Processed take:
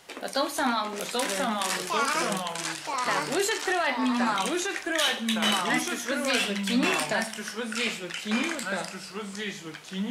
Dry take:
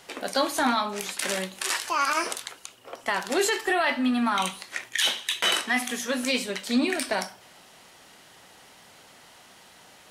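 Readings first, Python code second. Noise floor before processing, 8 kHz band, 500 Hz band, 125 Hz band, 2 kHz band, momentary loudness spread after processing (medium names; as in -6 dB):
-53 dBFS, 0.0 dB, +0.5 dB, no reading, +0.5 dB, 9 LU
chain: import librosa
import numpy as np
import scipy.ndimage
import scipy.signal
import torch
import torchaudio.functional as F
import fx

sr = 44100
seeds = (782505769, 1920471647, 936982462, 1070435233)

y = fx.echo_pitch(x, sr, ms=740, semitones=-2, count=2, db_per_echo=-3.0)
y = F.gain(torch.from_numpy(y), -2.5).numpy()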